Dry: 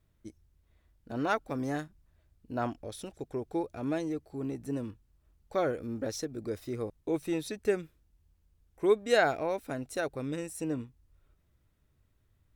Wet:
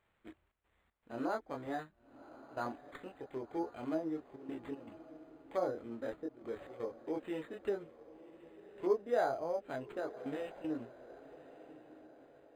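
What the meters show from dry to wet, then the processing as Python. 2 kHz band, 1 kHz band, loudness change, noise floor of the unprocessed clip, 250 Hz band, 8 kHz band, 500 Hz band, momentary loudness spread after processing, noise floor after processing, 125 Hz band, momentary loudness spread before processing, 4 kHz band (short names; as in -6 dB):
-11.5 dB, -5.5 dB, -6.5 dB, -71 dBFS, -7.0 dB, under -15 dB, -6.0 dB, 21 LU, -77 dBFS, -14.0 dB, 14 LU, -14.0 dB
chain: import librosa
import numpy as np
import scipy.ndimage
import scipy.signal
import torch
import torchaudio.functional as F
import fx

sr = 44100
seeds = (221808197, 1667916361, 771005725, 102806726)

p1 = fx.riaa(x, sr, side='recording')
p2 = fx.chorus_voices(p1, sr, voices=4, hz=0.3, base_ms=24, depth_ms=2.2, mix_pct=45)
p3 = fx.step_gate(p2, sr, bpm=117, pattern='xxxx.xx.xxxxxxx', floor_db=-12.0, edge_ms=4.5)
p4 = fx.env_lowpass_down(p3, sr, base_hz=890.0, full_db=-32.0)
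p5 = p4 + fx.echo_diffused(p4, sr, ms=1123, feedback_pct=44, wet_db=-16, dry=0)
p6 = np.interp(np.arange(len(p5)), np.arange(len(p5))[::8], p5[::8])
y = p6 * 10.0 ** (1.0 / 20.0)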